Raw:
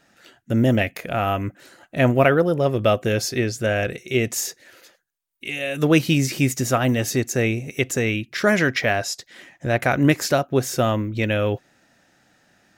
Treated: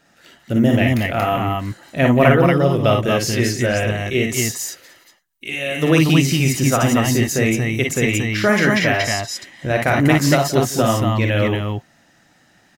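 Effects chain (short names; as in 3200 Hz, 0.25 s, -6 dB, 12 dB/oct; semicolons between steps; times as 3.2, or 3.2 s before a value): on a send: tapped delay 45/57/58/175/232/233 ms -7/-7/-7/-18/-3/-7 dB; on the sum: gain +1 dB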